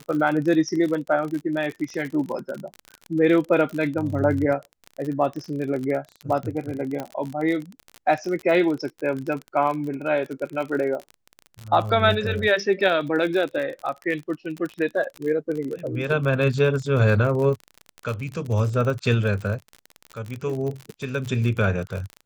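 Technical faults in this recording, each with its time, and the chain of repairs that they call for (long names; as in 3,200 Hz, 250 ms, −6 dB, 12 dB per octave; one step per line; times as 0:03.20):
surface crackle 42 per second −28 dBFS
0:07.00: click −16 dBFS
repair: click removal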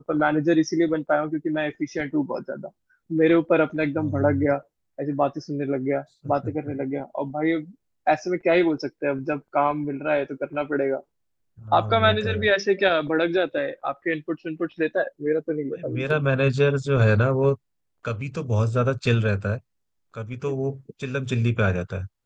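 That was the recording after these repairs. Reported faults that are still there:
none of them is left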